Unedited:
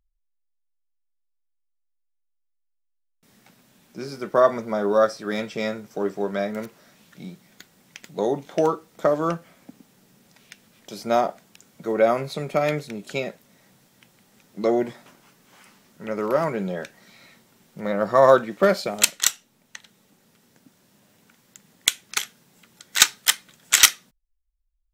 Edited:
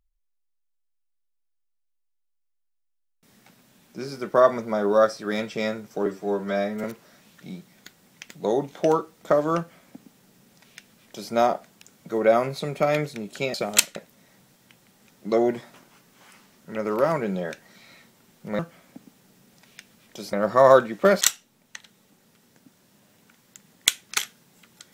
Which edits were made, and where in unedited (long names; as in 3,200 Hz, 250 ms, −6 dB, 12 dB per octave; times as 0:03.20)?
0:06.06–0:06.58: time-stretch 1.5×
0:09.32–0:11.06: duplicate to 0:17.91
0:18.79–0:19.21: move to 0:13.28